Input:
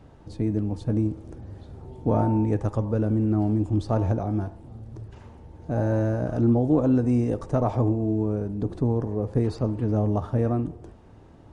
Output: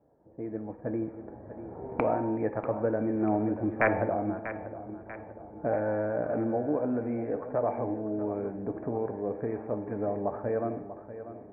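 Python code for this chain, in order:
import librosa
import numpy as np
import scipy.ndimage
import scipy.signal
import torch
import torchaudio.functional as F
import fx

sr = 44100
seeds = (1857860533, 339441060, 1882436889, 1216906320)

y = fx.doppler_pass(x, sr, speed_mps=12, closest_m=12.0, pass_at_s=3.53)
y = fx.recorder_agc(y, sr, target_db=-17.5, rise_db_per_s=6.8, max_gain_db=30)
y = fx.highpass(y, sr, hz=160.0, slope=6)
y = (np.mod(10.0 ** (14.5 / 20.0) * y + 1.0, 2.0) - 1.0) / 10.0 ** (14.5 / 20.0)
y = scipy.signal.sosfilt(scipy.signal.cheby1(6, 6, 2400.0, 'lowpass', fs=sr, output='sos'), y)
y = fx.low_shelf(y, sr, hz=330.0, db=-9.5)
y = fx.env_lowpass(y, sr, base_hz=610.0, full_db=-32.0)
y = fx.echo_feedback(y, sr, ms=641, feedback_pct=47, wet_db=-12.5)
y = fx.rev_gated(y, sr, seeds[0], gate_ms=260, shape='falling', drr_db=10.5)
y = F.gain(torch.from_numpy(y), 7.0).numpy()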